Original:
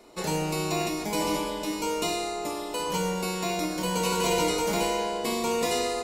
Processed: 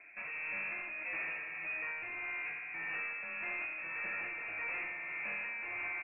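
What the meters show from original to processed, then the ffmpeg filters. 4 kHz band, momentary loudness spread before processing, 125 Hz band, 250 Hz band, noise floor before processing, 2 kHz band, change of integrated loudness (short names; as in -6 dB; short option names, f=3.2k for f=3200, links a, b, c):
under -25 dB, 6 LU, -29.5 dB, -29.0 dB, -34 dBFS, +0.5 dB, -10.0 dB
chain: -af "highpass=89,alimiter=limit=-17.5dB:level=0:latency=1:release=458,aresample=8000,asoftclip=type=tanh:threshold=-34dB,aresample=44100,tremolo=f=1.7:d=0.37,lowpass=f=2.4k:t=q:w=0.5098,lowpass=f=2.4k:t=q:w=0.6013,lowpass=f=2.4k:t=q:w=0.9,lowpass=f=2.4k:t=q:w=2.563,afreqshift=-2800,volume=-2dB"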